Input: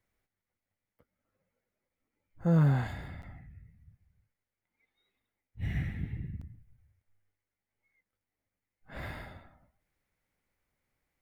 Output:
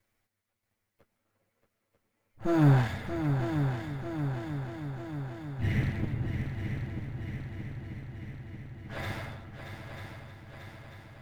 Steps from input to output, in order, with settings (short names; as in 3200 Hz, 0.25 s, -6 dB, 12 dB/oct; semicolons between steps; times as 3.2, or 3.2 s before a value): minimum comb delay 9 ms; on a send: multi-head echo 0.314 s, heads second and third, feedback 68%, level -8 dB; on the sum: gain +6 dB